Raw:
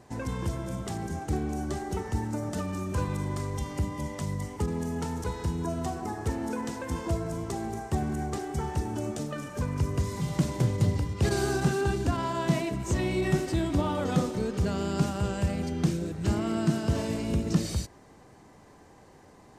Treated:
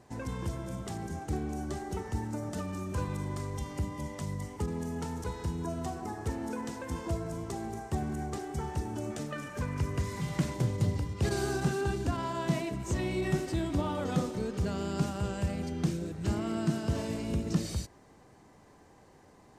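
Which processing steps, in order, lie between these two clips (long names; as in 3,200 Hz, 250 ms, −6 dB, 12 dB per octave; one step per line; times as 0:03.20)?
0:09.10–0:10.54: parametric band 1,900 Hz +6 dB 1.3 octaves
level −4 dB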